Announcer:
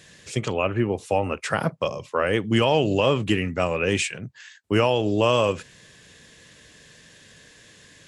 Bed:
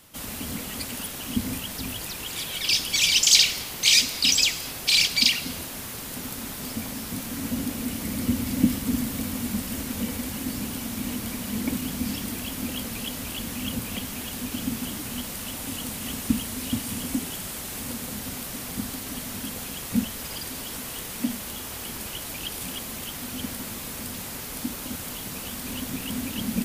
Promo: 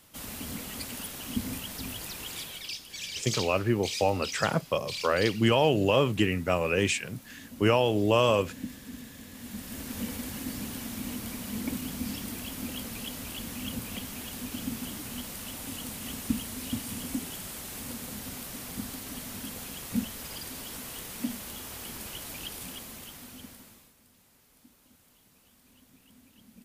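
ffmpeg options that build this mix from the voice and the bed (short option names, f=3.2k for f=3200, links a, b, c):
-filter_complex "[0:a]adelay=2900,volume=-3dB[a];[1:a]volume=7dB,afade=t=out:st=2.29:d=0.47:silence=0.237137,afade=t=in:st=9.31:d=0.7:silence=0.251189,afade=t=out:st=22.38:d=1.56:silence=0.0794328[b];[a][b]amix=inputs=2:normalize=0"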